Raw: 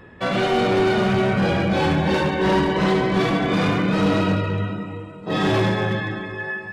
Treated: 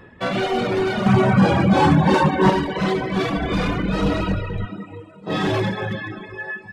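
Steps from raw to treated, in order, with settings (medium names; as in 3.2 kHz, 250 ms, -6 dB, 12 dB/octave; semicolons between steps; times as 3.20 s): 3.36–4.66 s: octave divider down 2 oct, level -4 dB; reverb removal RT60 1 s; 1.06–2.50 s: graphic EQ 125/250/1000/8000 Hz +8/+7/+10/+6 dB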